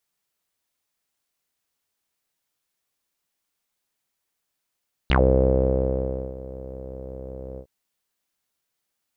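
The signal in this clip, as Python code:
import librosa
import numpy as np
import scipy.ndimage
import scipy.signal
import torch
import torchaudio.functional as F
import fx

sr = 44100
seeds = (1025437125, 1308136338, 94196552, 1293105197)

y = fx.sub_voice(sr, note=36, wave='saw', cutoff_hz=510.0, q=7.7, env_oct=3.0, env_s=0.1, attack_ms=1.0, decay_s=1.24, sustain_db=-20.0, release_s=0.08, note_s=2.48, slope=12)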